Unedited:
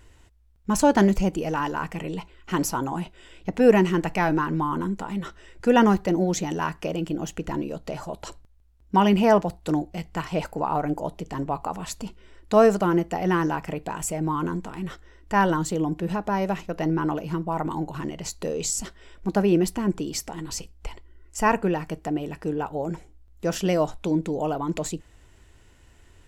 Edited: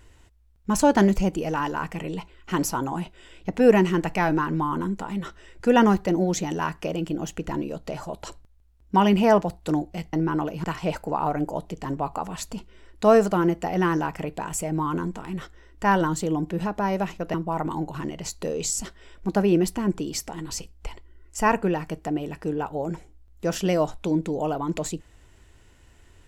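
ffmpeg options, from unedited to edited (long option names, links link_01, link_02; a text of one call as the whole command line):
ffmpeg -i in.wav -filter_complex "[0:a]asplit=4[link_01][link_02][link_03][link_04];[link_01]atrim=end=10.132[link_05];[link_02]atrim=start=16.828:end=17.342[link_06];[link_03]atrim=start=10.128:end=16.832[link_07];[link_04]atrim=start=17.338[link_08];[link_05][link_06]acrossfade=duration=0.004:curve1=hsin:curve2=hsin[link_09];[link_09][link_07]acrossfade=duration=0.004:curve1=hsin:curve2=hsin[link_10];[link_10][link_08]acrossfade=duration=0.004:curve1=hsin:curve2=hsin" out.wav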